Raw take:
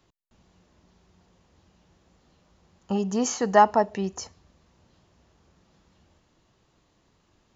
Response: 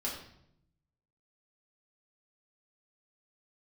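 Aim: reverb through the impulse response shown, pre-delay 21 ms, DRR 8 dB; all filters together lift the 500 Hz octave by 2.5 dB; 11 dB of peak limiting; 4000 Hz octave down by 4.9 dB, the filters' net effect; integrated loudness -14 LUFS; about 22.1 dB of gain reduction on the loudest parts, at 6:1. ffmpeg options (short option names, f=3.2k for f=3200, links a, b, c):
-filter_complex "[0:a]equalizer=f=500:t=o:g=3.5,equalizer=f=4k:t=o:g=-7.5,acompressor=threshold=-35dB:ratio=6,alimiter=level_in=11dB:limit=-24dB:level=0:latency=1,volume=-11dB,asplit=2[a][b];[1:a]atrim=start_sample=2205,adelay=21[c];[b][c]afir=irnorm=-1:irlink=0,volume=-11dB[d];[a][d]amix=inputs=2:normalize=0,volume=30dB"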